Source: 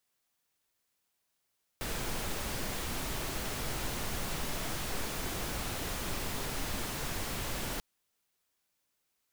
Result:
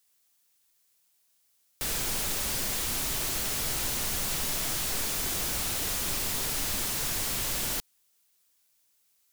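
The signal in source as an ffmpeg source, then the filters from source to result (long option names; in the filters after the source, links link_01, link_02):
-f lavfi -i "anoisesrc=color=pink:amplitude=0.0861:duration=5.99:sample_rate=44100:seed=1"
-af "highshelf=frequency=3200:gain=12"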